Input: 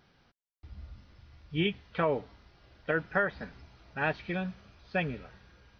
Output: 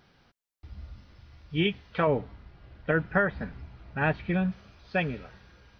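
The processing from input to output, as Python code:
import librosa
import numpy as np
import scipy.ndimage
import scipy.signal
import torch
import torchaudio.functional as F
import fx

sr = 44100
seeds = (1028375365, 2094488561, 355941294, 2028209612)

y = fx.bass_treble(x, sr, bass_db=7, treble_db=-12, at=(2.07, 4.52))
y = F.gain(torch.from_numpy(y), 3.0).numpy()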